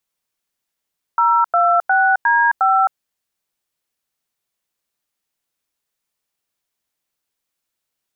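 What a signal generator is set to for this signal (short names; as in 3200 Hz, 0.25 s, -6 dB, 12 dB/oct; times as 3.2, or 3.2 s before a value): DTMF "026D5", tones 0.264 s, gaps 93 ms, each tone -14 dBFS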